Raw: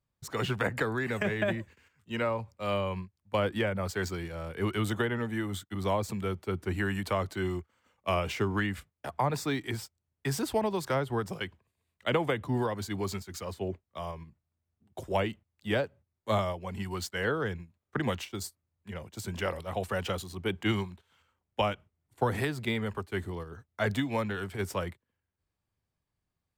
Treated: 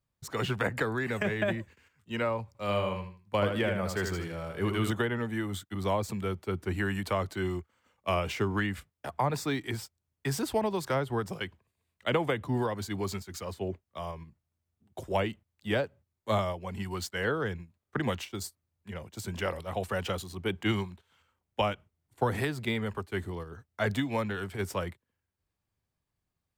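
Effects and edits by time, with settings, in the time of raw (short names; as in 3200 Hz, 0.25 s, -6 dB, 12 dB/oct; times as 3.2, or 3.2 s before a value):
2.47–4.91 feedback echo 78 ms, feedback 26%, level -6 dB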